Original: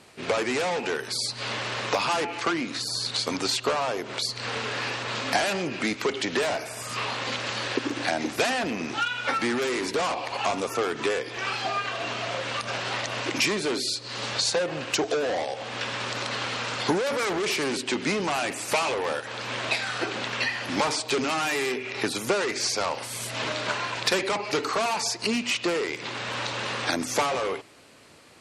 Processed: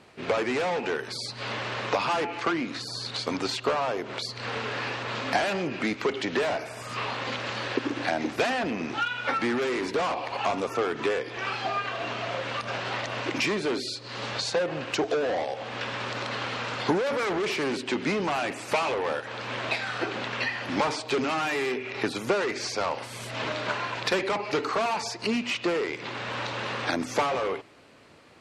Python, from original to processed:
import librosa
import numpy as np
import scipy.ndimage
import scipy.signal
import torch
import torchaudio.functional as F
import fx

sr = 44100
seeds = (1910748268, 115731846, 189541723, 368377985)

y = fx.peak_eq(x, sr, hz=11000.0, db=-12.0, octaves=1.9)